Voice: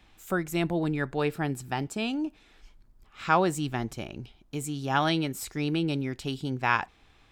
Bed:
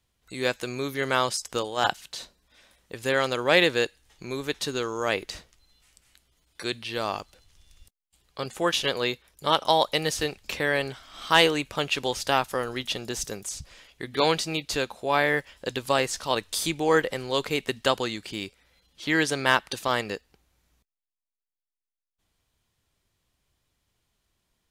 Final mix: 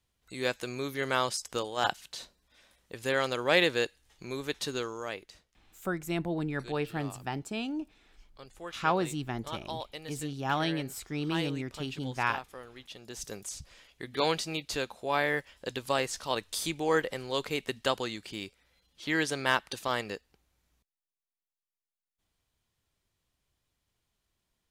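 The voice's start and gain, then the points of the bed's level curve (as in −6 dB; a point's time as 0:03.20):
5.55 s, −4.5 dB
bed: 0:04.79 −4.5 dB
0:05.35 −17.5 dB
0:12.89 −17.5 dB
0:13.35 −5.5 dB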